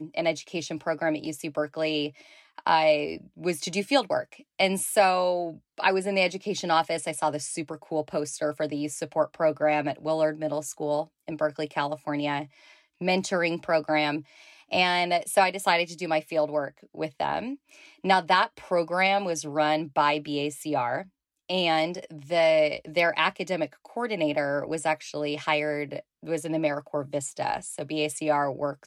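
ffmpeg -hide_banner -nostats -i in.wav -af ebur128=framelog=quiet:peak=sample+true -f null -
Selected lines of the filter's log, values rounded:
Integrated loudness:
  I:         -26.8 LUFS
  Threshold: -37.0 LUFS
Loudness range:
  LRA:         3.7 LU
  Threshold: -46.9 LUFS
  LRA low:   -29.0 LUFS
  LRA high:  -25.3 LUFS
Sample peak:
  Peak:       -9.3 dBFS
True peak:
  Peak:       -9.3 dBFS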